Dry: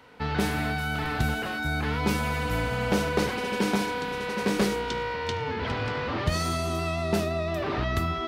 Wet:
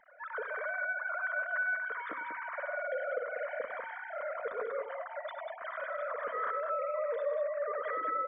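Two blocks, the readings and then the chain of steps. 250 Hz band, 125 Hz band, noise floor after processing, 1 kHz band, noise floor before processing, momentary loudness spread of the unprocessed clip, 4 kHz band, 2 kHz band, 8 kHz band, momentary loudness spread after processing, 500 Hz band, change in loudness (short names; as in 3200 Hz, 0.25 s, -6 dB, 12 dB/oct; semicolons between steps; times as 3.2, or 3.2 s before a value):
-32.0 dB, under -40 dB, -45 dBFS, -6.5 dB, -32 dBFS, 4 LU, -27.0 dB, -3.5 dB, under -40 dB, 8 LU, -5.5 dB, -8.0 dB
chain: sine-wave speech; de-hum 267.1 Hz, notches 3; compressor, threshold -28 dBFS, peak gain reduction 11.5 dB; fixed phaser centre 550 Hz, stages 8; tapped delay 62/97/192 ms -17.5/-12.5/-6.5 dB; gain -3.5 dB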